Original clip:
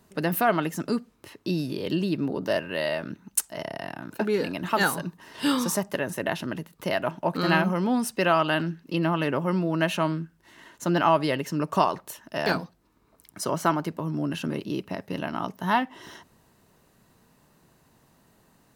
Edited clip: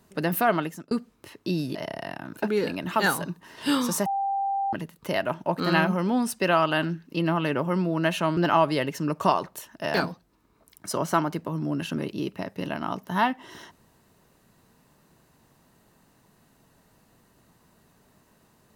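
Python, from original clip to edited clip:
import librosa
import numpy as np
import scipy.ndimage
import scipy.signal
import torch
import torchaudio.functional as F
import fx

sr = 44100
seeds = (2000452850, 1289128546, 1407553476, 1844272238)

y = fx.edit(x, sr, fx.fade_out_span(start_s=0.56, length_s=0.35),
    fx.cut(start_s=1.75, length_s=1.77),
    fx.bleep(start_s=5.83, length_s=0.67, hz=789.0, db=-23.5),
    fx.cut(start_s=10.14, length_s=0.75), tone=tone)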